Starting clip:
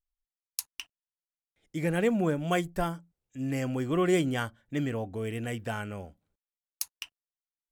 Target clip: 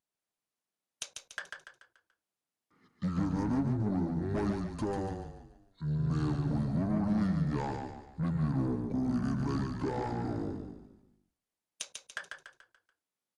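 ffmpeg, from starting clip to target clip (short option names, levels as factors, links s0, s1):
-filter_complex "[0:a]acompressor=threshold=0.0224:ratio=6,highpass=310,tiltshelf=f=1500:g=6,asoftclip=type=tanh:threshold=0.0251,asplit=6[s0][s1][s2][s3][s4][s5];[s1]adelay=83,afreqshift=-33,volume=0.562[s6];[s2]adelay=166,afreqshift=-66,volume=0.237[s7];[s3]adelay=249,afreqshift=-99,volume=0.0989[s8];[s4]adelay=332,afreqshift=-132,volume=0.0417[s9];[s5]adelay=415,afreqshift=-165,volume=0.0176[s10];[s0][s6][s7][s8][s9][s10]amix=inputs=6:normalize=0,asetrate=25442,aresample=44100,equalizer=f=420:w=1.5:g=-2.5,volume=2"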